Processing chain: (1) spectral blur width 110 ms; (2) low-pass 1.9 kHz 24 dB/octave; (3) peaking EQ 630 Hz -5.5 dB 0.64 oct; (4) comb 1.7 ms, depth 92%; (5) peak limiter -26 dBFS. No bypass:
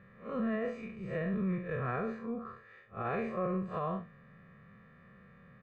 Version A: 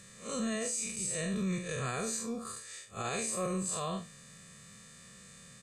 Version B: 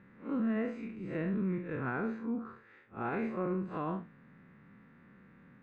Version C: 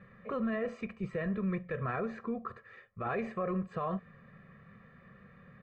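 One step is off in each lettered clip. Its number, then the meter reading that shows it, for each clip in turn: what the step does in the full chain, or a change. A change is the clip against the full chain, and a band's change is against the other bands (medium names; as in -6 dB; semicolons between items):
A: 2, 2 kHz band +2.5 dB; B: 4, 250 Hz band +3.5 dB; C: 1, momentary loudness spread change +10 LU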